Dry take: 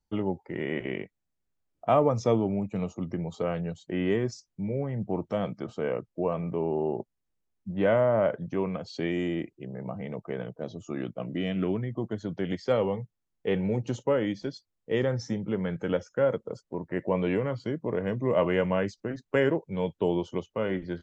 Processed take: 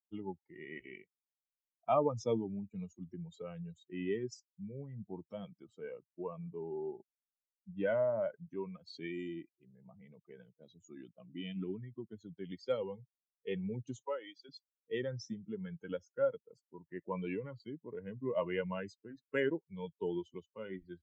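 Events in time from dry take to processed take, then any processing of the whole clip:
14.02–14.49 s: high-pass 450 Hz
whole clip: expander on every frequency bin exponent 2; bass shelf 150 Hz -9 dB; trim -4 dB

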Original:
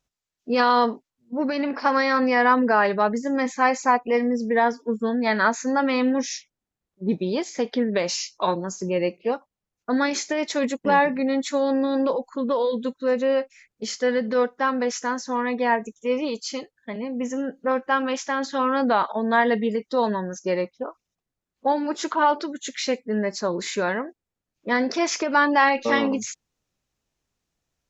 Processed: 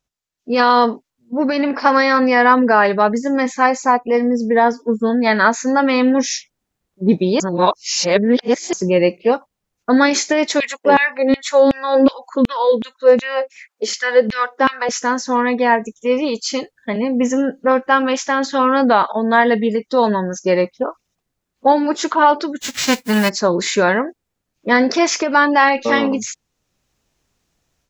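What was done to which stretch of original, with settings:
3.66–5.10 s: peaking EQ 2.6 kHz -5 dB 1.6 oct
7.40–8.73 s: reverse
10.60–14.89 s: LFO high-pass saw down 2.7 Hz 230–2900 Hz
22.60–23.28 s: formants flattened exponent 0.3
whole clip: level rider

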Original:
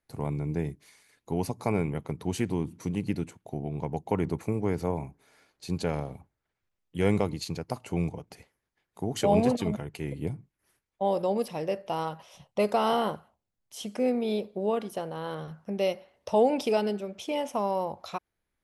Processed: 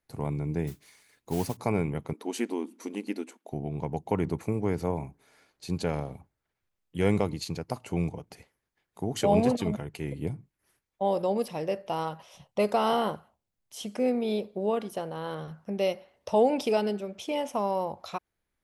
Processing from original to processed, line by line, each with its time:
0.67–1.57 s: modulation noise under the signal 16 dB
2.13–3.52 s: brick-wall FIR high-pass 210 Hz

